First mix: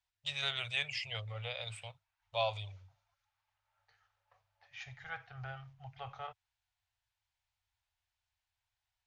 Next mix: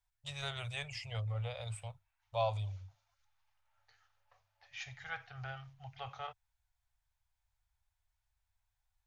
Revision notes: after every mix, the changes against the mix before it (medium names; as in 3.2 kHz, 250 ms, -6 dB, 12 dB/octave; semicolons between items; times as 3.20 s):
first voice: remove frequency weighting D; master: add treble shelf 4.2 kHz +9.5 dB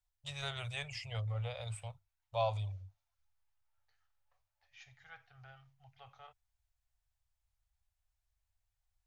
second voice -12.0 dB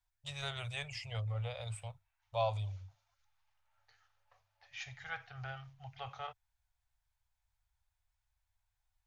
second voice +12.0 dB